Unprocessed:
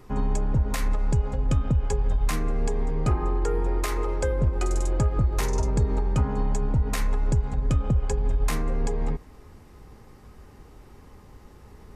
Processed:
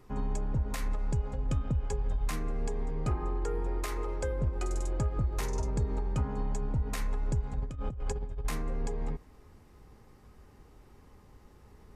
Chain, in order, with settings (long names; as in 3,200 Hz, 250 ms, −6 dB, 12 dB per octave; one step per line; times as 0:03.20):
0:07.62–0:08.45: compressor whose output falls as the input rises −25 dBFS, ratio −0.5
level −7.5 dB